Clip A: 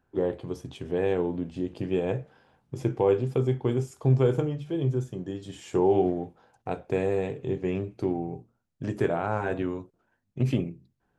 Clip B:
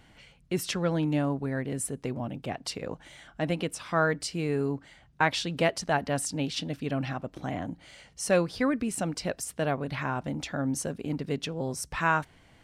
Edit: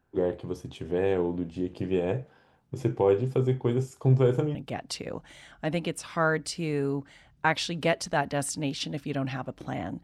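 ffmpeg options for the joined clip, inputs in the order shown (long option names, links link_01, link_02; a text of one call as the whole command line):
ffmpeg -i cue0.wav -i cue1.wav -filter_complex "[0:a]apad=whole_dur=10.03,atrim=end=10.03,atrim=end=4.552[link_01];[1:a]atrim=start=2.308:end=7.79[link_02];[link_01][link_02]acrossfade=duration=0.004:curve1=hsin:curve2=hsin" out.wav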